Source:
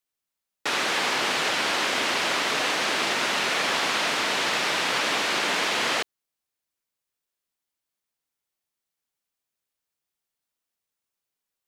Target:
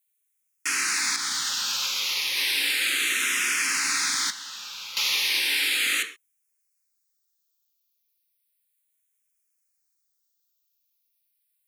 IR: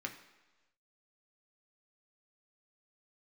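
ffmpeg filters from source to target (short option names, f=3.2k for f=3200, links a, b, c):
-filter_complex "[0:a]aeval=exprs='clip(val(0),-1,0.119)':c=same,asuperstop=centerf=660:order=4:qfactor=1.9,highshelf=f=2.8k:g=7,asettb=1/sr,asplit=3[a][b][c];[a]atrim=end=1.164[d];[b]atrim=start=1.16:end=2.37,asetpts=PTS-STARTPTS,afade=t=in:d=0.004:c=qsin,afade=t=out:st=1.206:d=0.004:c=qsin,agate=range=-33dB:threshold=-19dB:ratio=3:detection=peak[e];[c]atrim=start=2.366[f];[d][e]acrossfade=d=0.004:c1=hsin:c2=qsin[g];[g][f]acrossfade=d=0.004:c1=qsin:c2=hsin,crystalizer=i=7:c=0[h];[1:a]atrim=start_sample=2205,atrim=end_sample=6174[i];[h][i]afir=irnorm=-1:irlink=0,asettb=1/sr,asplit=3[j][k][l];[j]atrim=end=4.304[m];[k]atrim=start=4.3:end=4.97,asetpts=PTS-STARTPTS,afade=t=in:d=0.004:c=qsin,afade=t=out:st=0.666:d=0.004:c=qsin,acrossover=split=530|4100[n][o][p];[n]acompressor=threshold=-54dB:ratio=4[q];[o]acompressor=threshold=-27dB:ratio=4[r];[p]acompressor=threshold=-34dB:ratio=4[s];[q][r][s]amix=inputs=3:normalize=0[t];[l]atrim=start=4.966[u];[m][t]acrossfade=d=0.004:c1=hsin:c2=qsin[v];[v][u]acrossfade=d=0.004:c1=qsin:c2=hsin,asplit=2[w][x];[x]afreqshift=-0.34[y];[w][y]amix=inputs=2:normalize=1,volume=-9dB"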